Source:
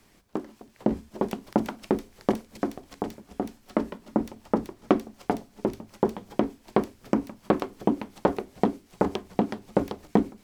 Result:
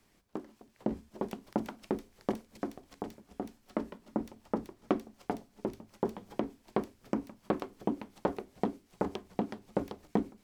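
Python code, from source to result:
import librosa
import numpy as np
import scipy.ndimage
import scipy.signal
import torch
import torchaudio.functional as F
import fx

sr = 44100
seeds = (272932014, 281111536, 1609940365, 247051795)

y = fx.band_squash(x, sr, depth_pct=40, at=(6.05, 6.62))
y = y * librosa.db_to_amplitude(-8.5)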